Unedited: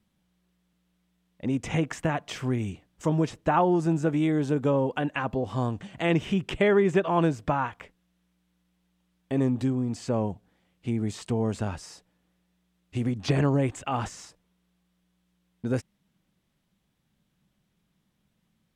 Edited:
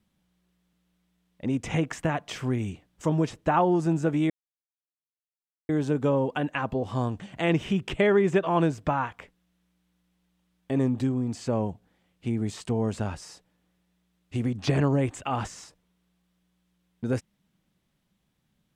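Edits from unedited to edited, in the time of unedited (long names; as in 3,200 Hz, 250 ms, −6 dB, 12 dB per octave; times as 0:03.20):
0:04.30: splice in silence 1.39 s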